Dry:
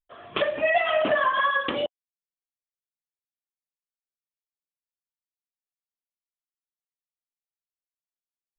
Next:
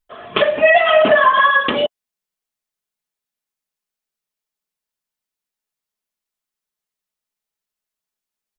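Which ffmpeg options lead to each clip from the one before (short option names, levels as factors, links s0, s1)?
-af "aecho=1:1:4.7:0.36,volume=2.82"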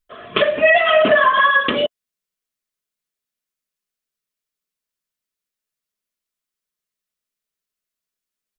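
-af "equalizer=f=830:t=o:w=0.39:g=-9"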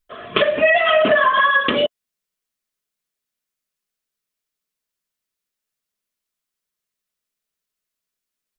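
-af "acompressor=threshold=0.158:ratio=2,volume=1.26"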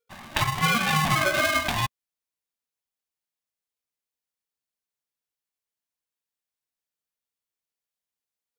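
-af "aeval=exprs='val(0)*sgn(sin(2*PI*470*n/s))':c=same,volume=0.398"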